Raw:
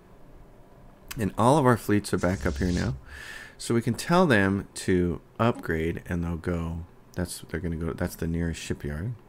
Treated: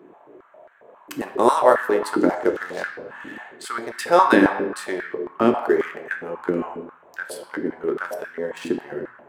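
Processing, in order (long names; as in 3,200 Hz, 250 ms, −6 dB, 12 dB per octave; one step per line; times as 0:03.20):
adaptive Wiener filter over 9 samples
on a send at −4 dB: convolution reverb RT60 1.3 s, pre-delay 4 ms
on the sum: high-pass on a step sequencer 7.4 Hz 300–1,600 Hz
level +1.5 dB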